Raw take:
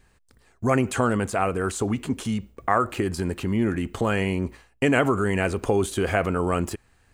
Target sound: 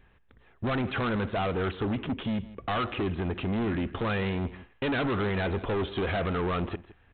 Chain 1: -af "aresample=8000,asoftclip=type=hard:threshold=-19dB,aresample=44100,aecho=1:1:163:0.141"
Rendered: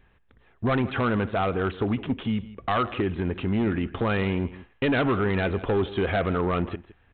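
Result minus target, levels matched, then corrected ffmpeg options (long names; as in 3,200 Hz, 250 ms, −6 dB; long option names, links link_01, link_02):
hard clipping: distortion −6 dB
-af "aresample=8000,asoftclip=type=hard:threshold=-26dB,aresample=44100,aecho=1:1:163:0.141"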